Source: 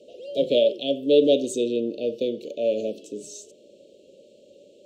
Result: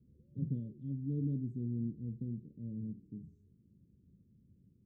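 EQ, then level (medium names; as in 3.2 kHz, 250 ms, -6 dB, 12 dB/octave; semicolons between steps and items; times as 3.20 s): inverse Chebyshev low-pass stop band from 620 Hz, stop band 70 dB; +12.5 dB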